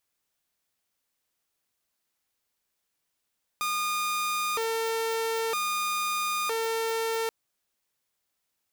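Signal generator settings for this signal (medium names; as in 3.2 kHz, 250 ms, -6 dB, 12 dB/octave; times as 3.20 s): siren hi-lo 452–1220 Hz 0.52 per s saw -24 dBFS 3.68 s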